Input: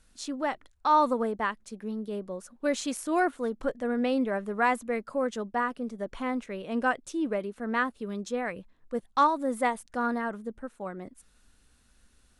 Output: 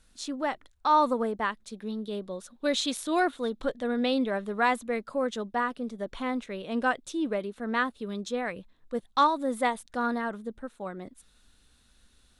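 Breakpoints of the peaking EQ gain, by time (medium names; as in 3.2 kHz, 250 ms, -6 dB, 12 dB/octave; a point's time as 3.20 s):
peaking EQ 3.7 kHz 0.43 oct
1.39 s +3.5 dB
1.88 s +15 dB
4.19 s +15 dB
4.92 s +8.5 dB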